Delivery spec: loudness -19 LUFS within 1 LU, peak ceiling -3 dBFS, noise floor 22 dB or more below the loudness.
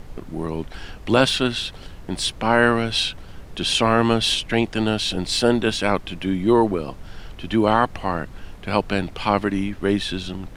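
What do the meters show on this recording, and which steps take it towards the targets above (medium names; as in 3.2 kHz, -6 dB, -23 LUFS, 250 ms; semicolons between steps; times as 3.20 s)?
noise floor -40 dBFS; noise floor target -44 dBFS; loudness -21.5 LUFS; peak level -2.5 dBFS; loudness target -19.0 LUFS
-> noise print and reduce 6 dB; trim +2.5 dB; peak limiter -3 dBFS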